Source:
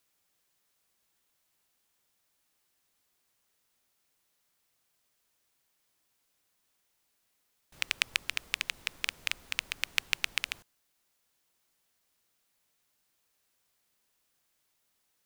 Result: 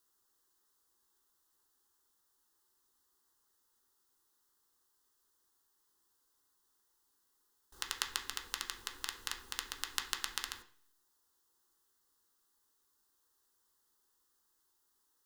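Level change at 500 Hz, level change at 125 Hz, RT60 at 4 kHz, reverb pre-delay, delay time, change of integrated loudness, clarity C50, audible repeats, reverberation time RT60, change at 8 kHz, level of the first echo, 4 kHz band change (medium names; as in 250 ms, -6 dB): -3.5 dB, -5.5 dB, 0.45 s, 3 ms, no echo, -6.5 dB, 11.0 dB, no echo, 0.55 s, -1.0 dB, no echo, -6.0 dB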